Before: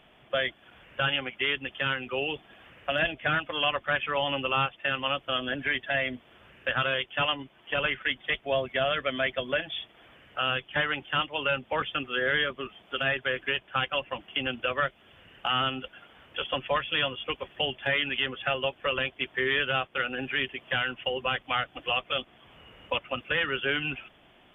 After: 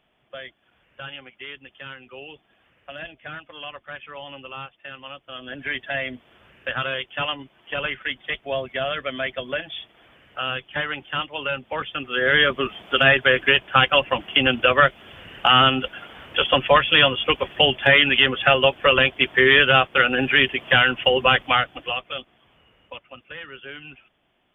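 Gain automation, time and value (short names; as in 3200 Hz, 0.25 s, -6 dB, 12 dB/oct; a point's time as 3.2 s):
5.28 s -9.5 dB
5.72 s +1 dB
11.94 s +1 dB
12.52 s +12 dB
21.43 s +12 dB
21.99 s 0 dB
23.04 s -10 dB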